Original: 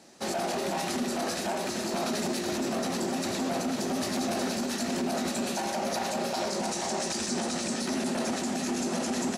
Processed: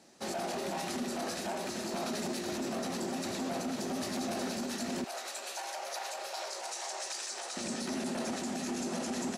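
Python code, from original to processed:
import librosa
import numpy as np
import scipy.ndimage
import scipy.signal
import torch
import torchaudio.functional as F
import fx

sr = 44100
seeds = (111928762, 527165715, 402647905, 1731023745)

y = fx.bessel_highpass(x, sr, hz=730.0, order=6, at=(5.04, 7.57))
y = y * librosa.db_to_amplitude(-5.5)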